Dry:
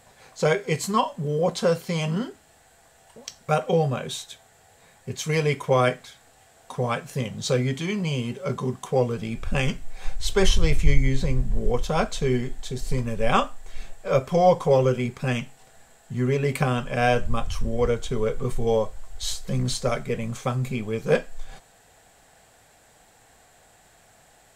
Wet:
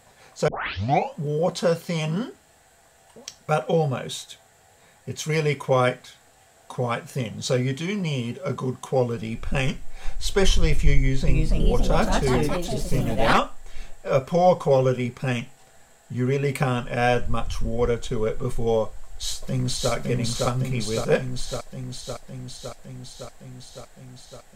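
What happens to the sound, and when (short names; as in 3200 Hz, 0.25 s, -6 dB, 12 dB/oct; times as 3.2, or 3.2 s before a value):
0.48 tape start 0.67 s
10.95–13.4 echoes that change speed 0.325 s, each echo +3 st, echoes 3
18.86–19.92 echo throw 0.56 s, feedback 75%, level -1.5 dB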